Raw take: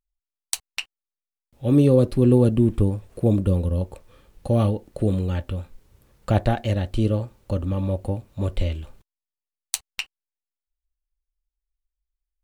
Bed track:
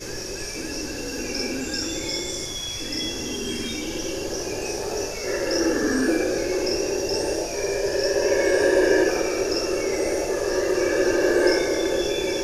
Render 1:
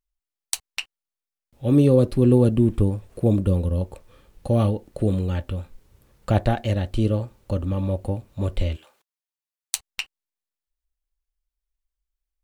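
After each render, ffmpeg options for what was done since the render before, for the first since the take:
ffmpeg -i in.wav -filter_complex "[0:a]asplit=3[link_01][link_02][link_03];[link_01]afade=type=out:start_time=8.75:duration=0.02[link_04];[link_02]highpass=630,afade=type=in:start_time=8.75:duration=0.02,afade=type=out:start_time=9.75:duration=0.02[link_05];[link_03]afade=type=in:start_time=9.75:duration=0.02[link_06];[link_04][link_05][link_06]amix=inputs=3:normalize=0" out.wav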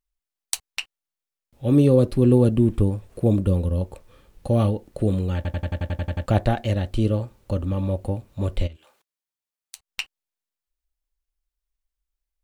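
ffmpeg -i in.wav -filter_complex "[0:a]asplit=3[link_01][link_02][link_03];[link_01]afade=type=out:start_time=8.66:duration=0.02[link_04];[link_02]acompressor=threshold=-51dB:ratio=2:attack=3.2:release=140:knee=1:detection=peak,afade=type=in:start_time=8.66:duration=0.02,afade=type=out:start_time=9.9:duration=0.02[link_05];[link_03]afade=type=in:start_time=9.9:duration=0.02[link_06];[link_04][link_05][link_06]amix=inputs=3:normalize=0,asplit=11[link_07][link_08][link_09][link_10][link_11][link_12][link_13][link_14][link_15][link_16][link_17];[link_07]atrim=end=5.452[link_18];[link_08]atrim=start=5.358:end=5.452[link_19];[link_09]atrim=start=5.358:end=5.452[link_20];[link_10]atrim=start=5.358:end=5.452[link_21];[link_11]atrim=start=5.358:end=5.452[link_22];[link_12]atrim=start=5.358:end=5.452[link_23];[link_13]atrim=start=5.358:end=5.452[link_24];[link_14]atrim=start=5.358:end=5.452[link_25];[link_15]atrim=start=5.358:end=5.452[link_26];[link_16]atrim=start=5.358:end=5.452[link_27];[link_17]atrim=start=6.258[link_28];[link_18][link_19]acrossfade=duration=0.004:curve1=hsin:curve2=hsin[link_29];[link_29][link_20]acrossfade=duration=0.004:curve1=hsin:curve2=hsin[link_30];[link_30][link_21]acrossfade=duration=0.004:curve1=hsin:curve2=hsin[link_31];[link_31][link_22]acrossfade=duration=0.004:curve1=hsin:curve2=hsin[link_32];[link_32][link_23]acrossfade=duration=0.004:curve1=hsin:curve2=hsin[link_33];[link_33][link_24]acrossfade=duration=0.004:curve1=hsin:curve2=hsin[link_34];[link_34][link_25]acrossfade=duration=0.004:curve1=hsin:curve2=hsin[link_35];[link_35][link_26]acrossfade=duration=0.004:curve1=hsin:curve2=hsin[link_36];[link_36][link_27]acrossfade=duration=0.004:curve1=hsin:curve2=hsin[link_37];[link_37][link_28]acrossfade=duration=0.004:curve1=hsin:curve2=hsin" out.wav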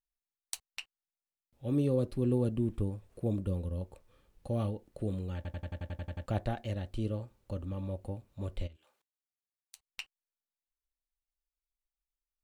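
ffmpeg -i in.wav -af "volume=-13dB" out.wav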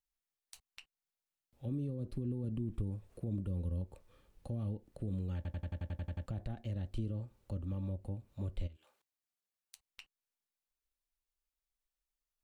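ffmpeg -i in.wav -filter_complex "[0:a]alimiter=level_in=3.5dB:limit=-24dB:level=0:latency=1:release=32,volume=-3.5dB,acrossover=split=290[link_01][link_02];[link_02]acompressor=threshold=-51dB:ratio=6[link_03];[link_01][link_03]amix=inputs=2:normalize=0" out.wav

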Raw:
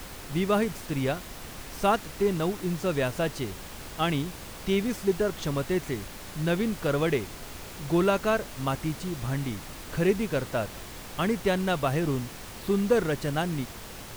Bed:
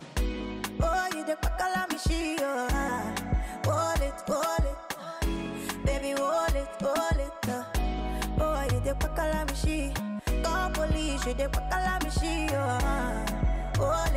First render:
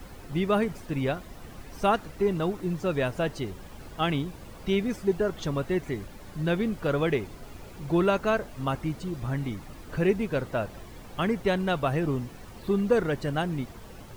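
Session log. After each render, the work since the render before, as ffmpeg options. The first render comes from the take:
ffmpeg -i in.wav -af "afftdn=noise_reduction=11:noise_floor=-42" out.wav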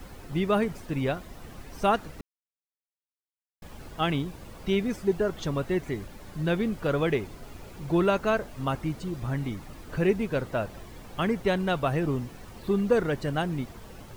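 ffmpeg -i in.wav -filter_complex "[0:a]asplit=3[link_01][link_02][link_03];[link_01]atrim=end=2.21,asetpts=PTS-STARTPTS,afade=type=out:start_time=2.206:duration=0.004:curve=hsin[link_04];[link_02]atrim=start=2.21:end=3.62,asetpts=PTS-STARTPTS,volume=0[link_05];[link_03]atrim=start=3.62,asetpts=PTS-STARTPTS,afade=type=in:duration=0.004:curve=hsin[link_06];[link_04][link_05][link_06]concat=n=3:v=0:a=1" out.wav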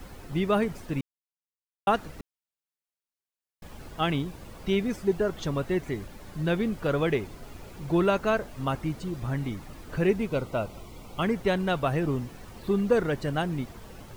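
ffmpeg -i in.wav -filter_complex "[0:a]asettb=1/sr,asplit=3[link_01][link_02][link_03];[link_01]atrim=end=10.294[link_04];[link_02]atrim=start=10.29:end=11.23,asetpts=PTS-STARTPTS,afade=type=in:duration=0.004:curve=qsin,afade=type=out:start_time=0.936:duration=0.004:curve=qsin,asuperstop=centerf=1700:order=4:qfactor=3.4[link_05];[link_03]atrim=start=11.226[link_06];[link_04][link_05]acrossfade=duration=0.004:curve1=hsin:curve2=qsin[link_07];[link_07][link_06]acrossfade=duration=0.004:curve1=qsin:curve2=hsin,asplit=3[link_08][link_09][link_10];[link_08]atrim=end=1.01,asetpts=PTS-STARTPTS,afade=type=out:start_time=1.006:duration=0.004:curve=hsin[link_11];[link_09]atrim=start=1.01:end=1.87,asetpts=PTS-STARTPTS,volume=0[link_12];[link_10]atrim=start=1.87,asetpts=PTS-STARTPTS,afade=type=in:duration=0.004:curve=hsin[link_13];[link_11][link_12][link_13]concat=n=3:v=0:a=1" out.wav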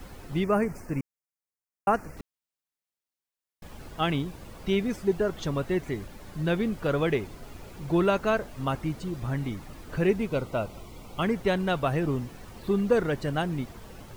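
ffmpeg -i in.wav -filter_complex "[0:a]asettb=1/sr,asplit=3[link_01][link_02][link_03];[link_01]atrim=end=0.444[link_04];[link_02]atrim=start=0.44:end=2.17,asetpts=PTS-STARTPTS,afade=type=in:duration=0.004:curve=qsin,afade=type=out:start_time=1.726:duration=0.004:curve=qsin,asuperstop=centerf=3500:order=4:qfactor=1.3[link_05];[link_03]atrim=start=2.166[link_06];[link_04][link_05]acrossfade=duration=0.004:curve1=hsin:curve2=qsin[link_07];[link_07][link_06]acrossfade=duration=0.004:curve1=qsin:curve2=hsin" out.wav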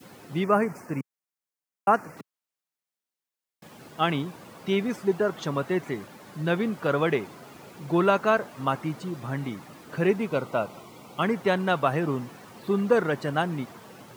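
ffmpeg -i in.wav -af "highpass=frequency=130:width=0.5412,highpass=frequency=130:width=1.3066,adynamicequalizer=threshold=0.00891:dfrequency=1100:dqfactor=0.9:tfrequency=1100:tqfactor=0.9:attack=5:release=100:ratio=0.375:range=3:mode=boostabove:tftype=bell" out.wav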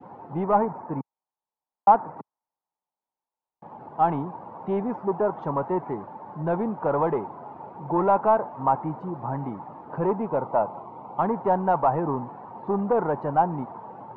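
ffmpeg -i in.wav -af "asoftclip=type=tanh:threshold=-20dB,lowpass=frequency=890:width_type=q:width=5.9" out.wav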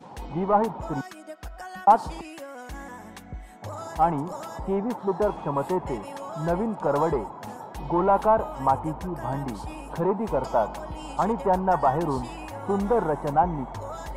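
ffmpeg -i in.wav -i bed.wav -filter_complex "[1:a]volume=-10.5dB[link_01];[0:a][link_01]amix=inputs=2:normalize=0" out.wav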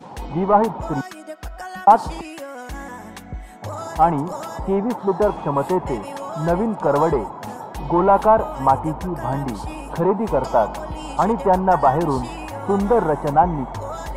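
ffmpeg -i in.wav -af "volume=6dB,alimiter=limit=-1dB:level=0:latency=1" out.wav

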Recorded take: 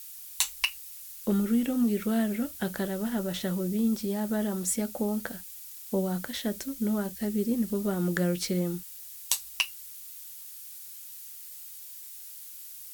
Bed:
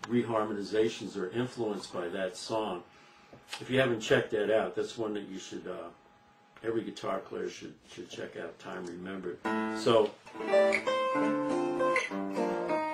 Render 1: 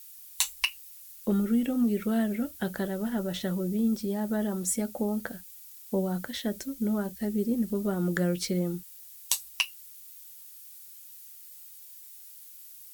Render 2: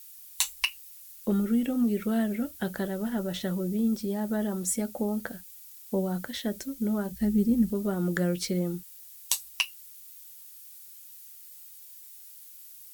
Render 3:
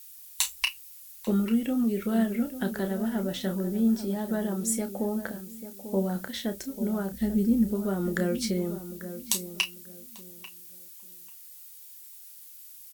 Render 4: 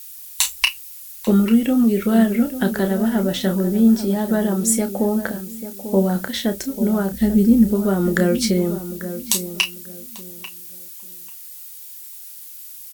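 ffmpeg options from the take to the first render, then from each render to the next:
ffmpeg -i in.wav -af "afftdn=noise_reduction=6:noise_floor=-45" out.wav
ffmpeg -i in.wav -filter_complex "[0:a]asplit=3[link_01][link_02][link_03];[link_01]afade=type=out:start_time=7.1:duration=0.02[link_04];[link_02]asubboost=boost=4:cutoff=200,afade=type=in:start_time=7.1:duration=0.02,afade=type=out:start_time=7.69:duration=0.02[link_05];[link_03]afade=type=in:start_time=7.69:duration=0.02[link_06];[link_04][link_05][link_06]amix=inputs=3:normalize=0" out.wav
ffmpeg -i in.wav -filter_complex "[0:a]asplit=2[link_01][link_02];[link_02]adelay=31,volume=-9dB[link_03];[link_01][link_03]amix=inputs=2:normalize=0,asplit=2[link_04][link_05];[link_05]adelay=842,lowpass=frequency=1200:poles=1,volume=-11dB,asplit=2[link_06][link_07];[link_07]adelay=842,lowpass=frequency=1200:poles=1,volume=0.26,asplit=2[link_08][link_09];[link_09]adelay=842,lowpass=frequency=1200:poles=1,volume=0.26[link_10];[link_04][link_06][link_08][link_10]amix=inputs=4:normalize=0" out.wav
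ffmpeg -i in.wav -af "volume=10dB,alimiter=limit=-2dB:level=0:latency=1" out.wav

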